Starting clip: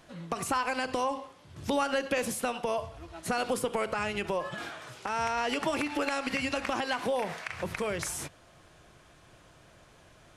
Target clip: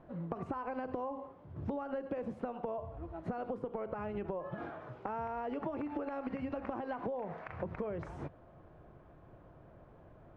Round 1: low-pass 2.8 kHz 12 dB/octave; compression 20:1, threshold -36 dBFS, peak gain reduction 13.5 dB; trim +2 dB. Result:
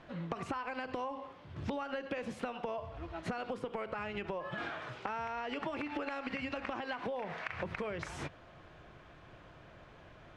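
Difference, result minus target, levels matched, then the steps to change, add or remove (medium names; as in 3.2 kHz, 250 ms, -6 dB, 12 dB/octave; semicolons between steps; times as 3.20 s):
2 kHz band +9.0 dB
change: low-pass 840 Hz 12 dB/octave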